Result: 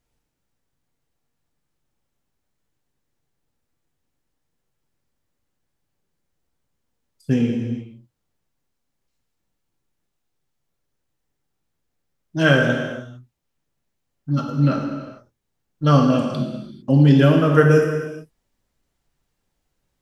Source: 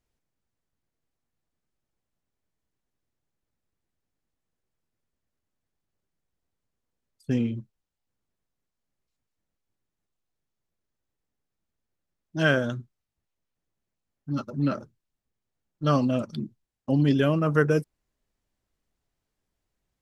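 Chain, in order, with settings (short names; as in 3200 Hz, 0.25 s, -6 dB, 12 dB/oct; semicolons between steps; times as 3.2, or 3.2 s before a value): non-linear reverb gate 0.48 s falling, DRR 0.5 dB; gain +4.5 dB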